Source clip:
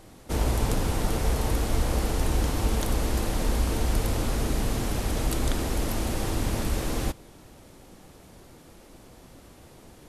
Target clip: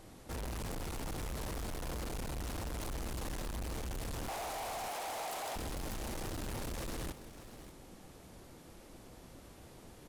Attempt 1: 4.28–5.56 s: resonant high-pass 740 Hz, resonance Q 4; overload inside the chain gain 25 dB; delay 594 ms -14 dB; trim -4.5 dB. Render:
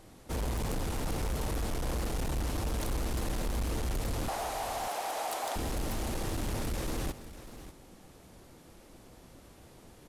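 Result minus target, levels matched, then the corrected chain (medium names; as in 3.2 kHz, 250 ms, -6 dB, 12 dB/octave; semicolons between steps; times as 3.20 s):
overload inside the chain: distortion -5 dB
4.28–5.56 s: resonant high-pass 740 Hz, resonance Q 4; overload inside the chain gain 34 dB; delay 594 ms -14 dB; trim -4.5 dB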